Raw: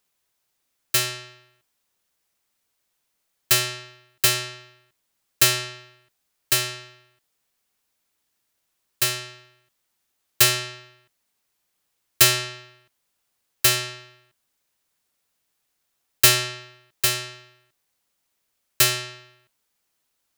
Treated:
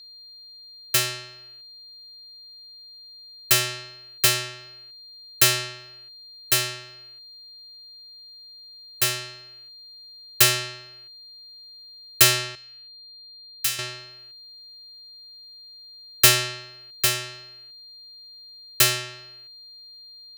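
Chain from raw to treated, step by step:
0:12.55–0:13.79: guitar amp tone stack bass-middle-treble 5-5-5
steady tone 4,200 Hz −43 dBFS

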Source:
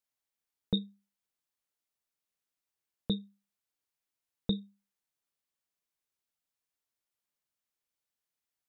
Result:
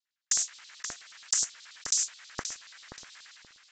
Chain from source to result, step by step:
stylus tracing distortion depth 0.27 ms
cochlear-implant simulation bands 2
voice inversion scrambler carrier 3,400 Hz
mains-hum notches 60/120/180/240/300 Hz
auto-filter high-pass square 4 Hz 700–1,700 Hz
wrong playback speed 33 rpm record played at 78 rpm
high-shelf EQ 2,600 Hz −8 dB
on a send: feedback echo with a low-pass in the loop 528 ms, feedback 27%, low-pass 830 Hz, level −3.5 dB
on the sum: level that may fall only so fast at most 21 dB per second
level +9 dB

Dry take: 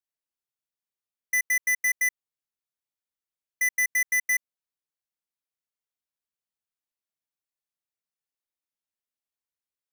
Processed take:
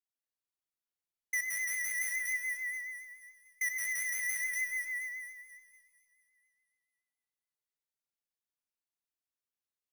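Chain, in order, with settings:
echo with a time of its own for lows and highs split 2,400 Hz, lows 174 ms, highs 240 ms, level −4 dB
four-comb reverb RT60 2.3 s, combs from 26 ms, DRR 3 dB
pitch vibrato 7 Hz 42 cents
level −8.5 dB

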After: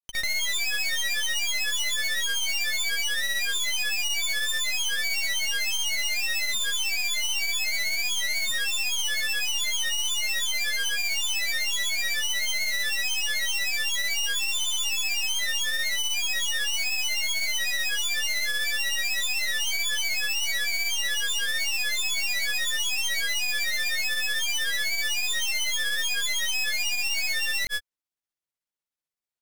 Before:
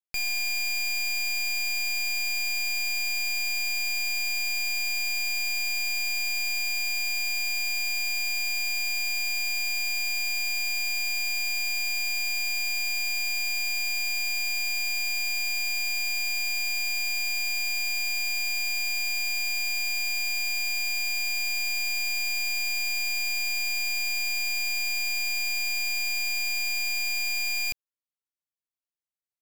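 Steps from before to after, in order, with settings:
granular cloud 122 ms, grains 16 per second, pitch spread up and down by 7 semitones
level +3 dB

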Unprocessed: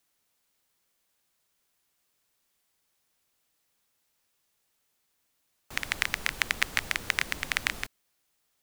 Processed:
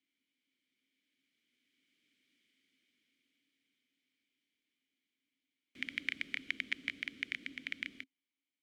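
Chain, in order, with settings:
source passing by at 0:02.33, 20 m/s, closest 15 metres
formant filter i
level +17 dB

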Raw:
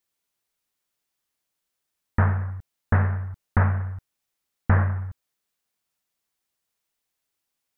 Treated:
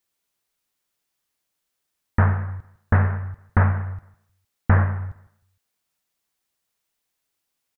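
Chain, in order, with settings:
repeating echo 154 ms, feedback 31%, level −19.5 dB
level +2.5 dB

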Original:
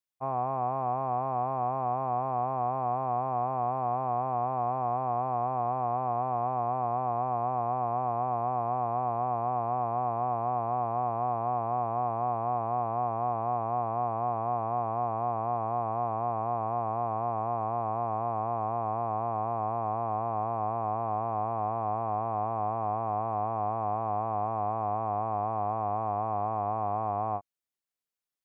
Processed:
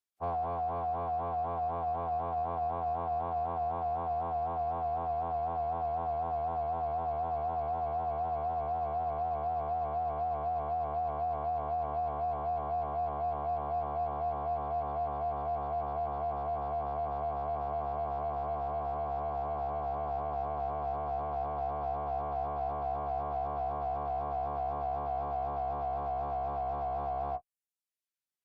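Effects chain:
harmonic generator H 7 −36 dB, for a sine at −19.5 dBFS
reverb reduction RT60 0.69 s
phase-vocoder pitch shift with formants kept −7.5 semitones
level −1 dB

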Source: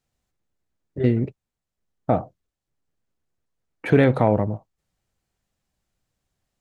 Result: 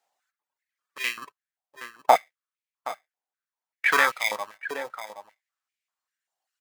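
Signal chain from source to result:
in parallel at −7 dB: decimation without filtering 31×
on the sum: single-tap delay 771 ms −12 dB
reverb reduction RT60 2 s
high-pass on a step sequencer 5.1 Hz 780–2,300 Hz
level +1.5 dB

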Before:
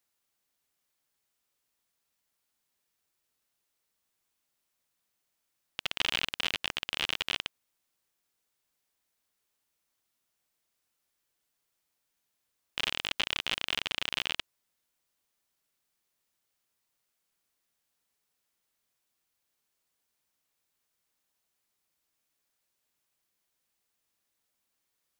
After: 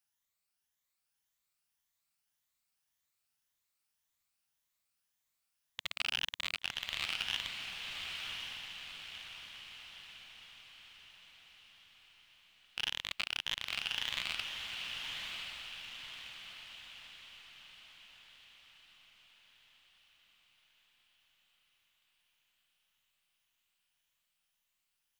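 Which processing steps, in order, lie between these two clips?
rippled gain that drifts along the octave scale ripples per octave 1.1, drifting +1.8 Hz, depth 8 dB
parametric band 390 Hz −11 dB 1.6 octaves
feedback delay with all-pass diffusion 1,074 ms, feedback 51%, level −3.5 dB
level −5.5 dB

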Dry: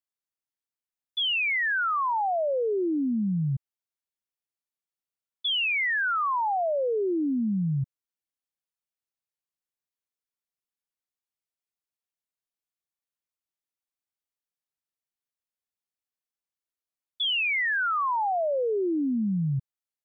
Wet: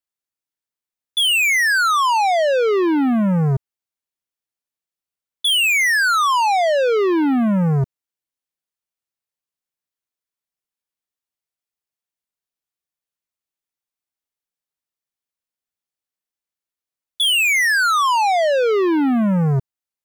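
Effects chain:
leveller curve on the samples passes 3
level +8 dB

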